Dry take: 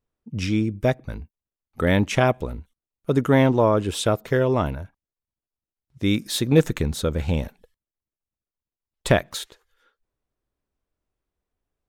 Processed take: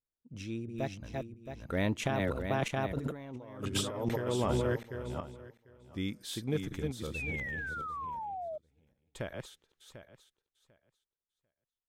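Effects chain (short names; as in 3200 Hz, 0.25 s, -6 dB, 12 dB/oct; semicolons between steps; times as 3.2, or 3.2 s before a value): regenerating reverse delay 0.354 s, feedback 41%, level -3.5 dB; Doppler pass-by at 3.45, 18 m/s, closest 3.7 m; negative-ratio compressor -35 dBFS, ratio -1; painted sound fall, 7.14–8.58, 600–2700 Hz -39 dBFS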